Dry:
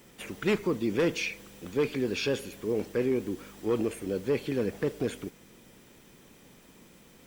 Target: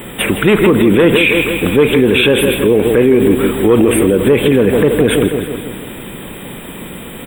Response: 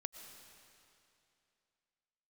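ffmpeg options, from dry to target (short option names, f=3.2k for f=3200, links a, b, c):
-filter_complex "[0:a]asuperstop=centerf=5500:order=20:qfactor=1.4,asplit=2[a][b];[b]aecho=0:1:161|322|483|644|805|966:0.266|0.146|0.0805|0.0443|0.0243|0.0134[c];[a][c]amix=inputs=2:normalize=0,alimiter=level_in=27.5dB:limit=-1dB:release=50:level=0:latency=1,volume=-1dB"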